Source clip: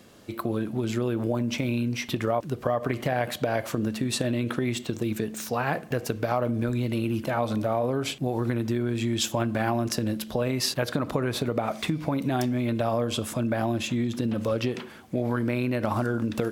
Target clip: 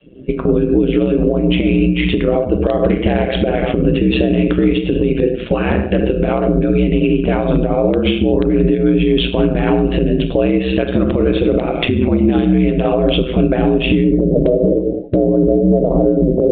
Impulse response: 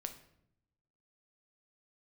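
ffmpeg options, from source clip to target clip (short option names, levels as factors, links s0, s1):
-filter_complex "[0:a]asetnsamples=n=441:p=0,asendcmd='14.04 lowpass f 560',lowpass=f=2900:t=q:w=3,adynamicequalizer=threshold=0.00891:dfrequency=200:dqfactor=1.2:tfrequency=200:tqfactor=1.2:attack=5:release=100:ratio=0.375:range=2:mode=cutabove:tftype=bell[s0];[1:a]atrim=start_sample=2205,afade=t=out:st=0.17:d=0.01,atrim=end_sample=7938,asetrate=25137,aresample=44100[s1];[s0][s1]afir=irnorm=-1:irlink=0,afftdn=nr=20:nf=-43,tremolo=f=3.8:d=0.46,lowshelf=f=610:t=q:w=1.5:g=11,aeval=exprs='val(0)*sin(2*PI*63*n/s)':c=same,acompressor=threshold=0.0891:ratio=2,alimiter=level_in=5.96:limit=0.891:release=50:level=0:latency=1,volume=0.708" -ar 8000 -c:a adpcm_g726 -b:a 40k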